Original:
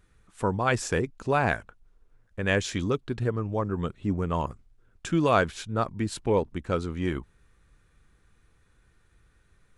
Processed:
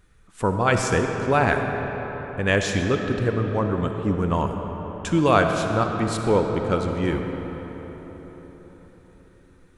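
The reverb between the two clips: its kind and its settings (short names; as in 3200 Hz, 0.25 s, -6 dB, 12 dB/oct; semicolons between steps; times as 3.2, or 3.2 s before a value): digital reverb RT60 4.8 s, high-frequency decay 0.55×, pre-delay 15 ms, DRR 4 dB; gain +4 dB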